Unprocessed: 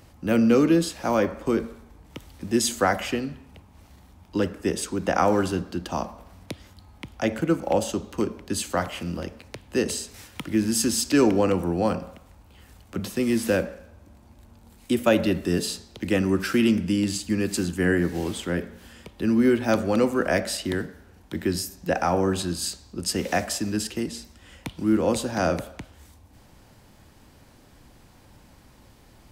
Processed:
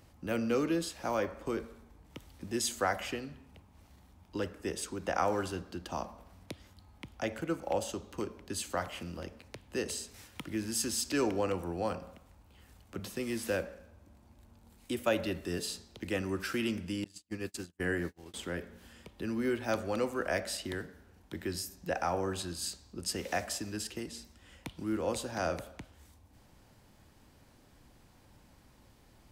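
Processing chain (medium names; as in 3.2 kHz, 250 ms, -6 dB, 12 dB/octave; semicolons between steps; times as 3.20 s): dynamic bell 210 Hz, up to -7 dB, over -34 dBFS, Q 0.91; 17.04–18.34 s: gate -27 dBFS, range -39 dB; trim -8 dB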